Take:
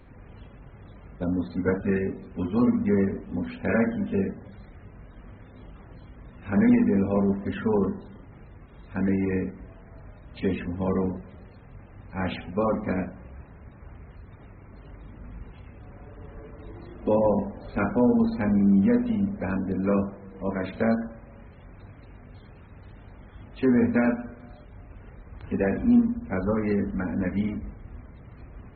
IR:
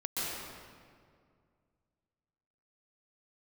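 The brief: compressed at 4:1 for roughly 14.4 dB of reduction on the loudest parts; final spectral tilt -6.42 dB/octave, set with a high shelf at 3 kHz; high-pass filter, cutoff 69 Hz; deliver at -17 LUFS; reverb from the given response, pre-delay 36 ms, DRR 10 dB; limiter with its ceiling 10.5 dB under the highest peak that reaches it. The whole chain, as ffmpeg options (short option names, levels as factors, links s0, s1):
-filter_complex "[0:a]highpass=69,highshelf=f=3000:g=-5,acompressor=threshold=0.02:ratio=4,alimiter=level_in=2.37:limit=0.0631:level=0:latency=1,volume=0.422,asplit=2[s0][s1];[1:a]atrim=start_sample=2205,adelay=36[s2];[s1][s2]afir=irnorm=-1:irlink=0,volume=0.158[s3];[s0][s3]amix=inputs=2:normalize=0,volume=16.8"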